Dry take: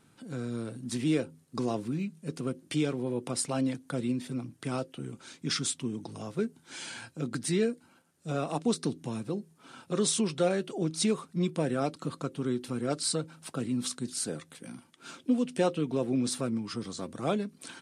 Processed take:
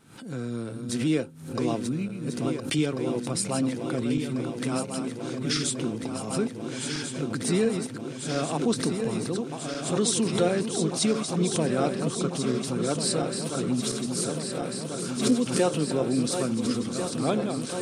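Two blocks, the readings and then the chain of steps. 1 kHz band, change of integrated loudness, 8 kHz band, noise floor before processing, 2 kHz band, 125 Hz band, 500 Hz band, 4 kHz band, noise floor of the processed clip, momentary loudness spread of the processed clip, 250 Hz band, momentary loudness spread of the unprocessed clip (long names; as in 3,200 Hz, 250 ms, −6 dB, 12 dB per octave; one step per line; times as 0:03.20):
+5.0 dB, +4.5 dB, +5.0 dB, −63 dBFS, +5.5 dB, +5.0 dB, +5.0 dB, +5.5 dB, −37 dBFS, 7 LU, +4.5 dB, 11 LU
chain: feedback delay that plays each chunk backwards 696 ms, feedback 85%, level −7.5 dB
background raised ahead of every attack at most 90 dB per second
level +2.5 dB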